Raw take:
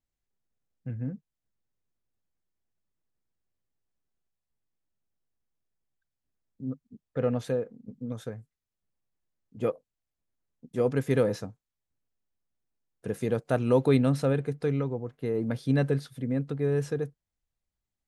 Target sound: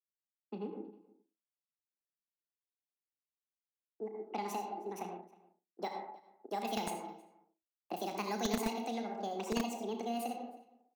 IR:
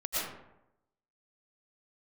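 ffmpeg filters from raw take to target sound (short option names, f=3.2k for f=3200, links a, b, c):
-filter_complex "[0:a]asplit=2[a][b];[1:a]atrim=start_sample=2205,lowshelf=f=490:g=5[c];[b][c]afir=irnorm=-1:irlink=0,volume=-10dB[d];[a][d]amix=inputs=2:normalize=0,anlmdn=0.0251,asetrate=72765,aresample=44100,acrossover=split=190|3000[e][f][g];[f]acompressor=threshold=-34dB:ratio=10[h];[e][h][g]amix=inputs=3:normalize=0,asplit=2[i][j];[j]adelay=34,volume=-10dB[k];[i][k]amix=inputs=2:normalize=0,asplit=2[l][m];[m]adelay=314.9,volume=-21dB,highshelf=f=4k:g=-7.08[n];[l][n]amix=inputs=2:normalize=0,acrossover=split=230|1100[o][p][q];[o]acrusher=bits=4:mix=0:aa=0.000001[r];[r][p][q]amix=inputs=3:normalize=0,volume=-2.5dB"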